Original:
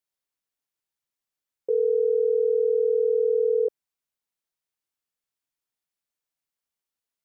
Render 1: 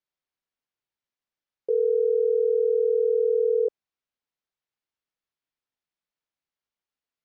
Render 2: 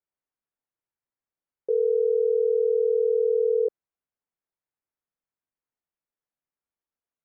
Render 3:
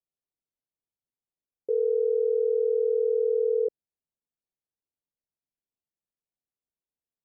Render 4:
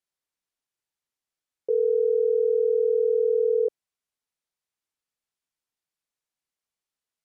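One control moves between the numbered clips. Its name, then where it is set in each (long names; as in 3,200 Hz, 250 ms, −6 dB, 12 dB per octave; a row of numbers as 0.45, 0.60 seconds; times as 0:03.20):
Bessel low-pass filter, frequency: 4,100, 1,500, 510, 11,000 Hertz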